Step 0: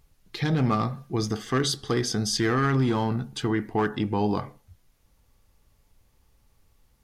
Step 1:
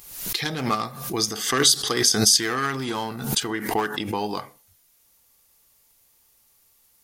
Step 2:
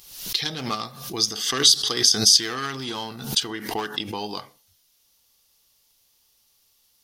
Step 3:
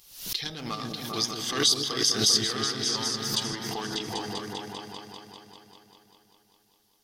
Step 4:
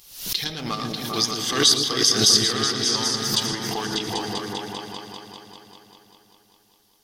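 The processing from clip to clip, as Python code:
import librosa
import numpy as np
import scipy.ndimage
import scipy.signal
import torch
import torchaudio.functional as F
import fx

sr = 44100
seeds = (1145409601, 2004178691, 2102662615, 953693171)

y1 = fx.riaa(x, sr, side='recording')
y1 = fx.transient(y1, sr, attack_db=5, sustain_db=0)
y1 = fx.pre_swell(y1, sr, db_per_s=70.0)
y2 = fx.band_shelf(y1, sr, hz=4100.0, db=8.0, octaves=1.3)
y2 = y2 * librosa.db_to_amplitude(-4.5)
y3 = fx.echo_opening(y2, sr, ms=197, hz=400, octaves=2, feedback_pct=70, wet_db=0)
y3 = fx.pre_swell(y3, sr, db_per_s=94.0)
y3 = y3 * librosa.db_to_amplitude(-7.0)
y4 = y3 + 10.0 ** (-12.0 / 20.0) * np.pad(y3, (int(114 * sr / 1000.0), 0))[:len(y3)]
y4 = y4 * librosa.db_to_amplitude(5.5)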